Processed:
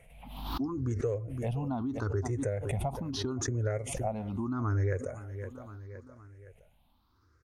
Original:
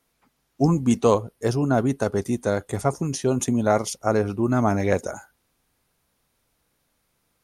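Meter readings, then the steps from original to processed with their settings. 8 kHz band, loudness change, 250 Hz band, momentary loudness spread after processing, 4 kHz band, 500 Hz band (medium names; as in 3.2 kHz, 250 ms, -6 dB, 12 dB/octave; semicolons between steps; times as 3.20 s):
-9.5 dB, -11.0 dB, -12.0 dB, 15 LU, -5.5 dB, -12.5 dB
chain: drifting ripple filter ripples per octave 0.5, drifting +0.77 Hz, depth 21 dB; tone controls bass +2 dB, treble -13 dB; on a send: feedback delay 515 ms, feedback 46%, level -23.5 dB; on the sum: compression 3:1, threshold -32 dBFS, peak gain reduction 19 dB; resonant low shelf 130 Hz +8 dB, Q 1.5; swell ahead of each attack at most 47 dB/s; trim -4 dB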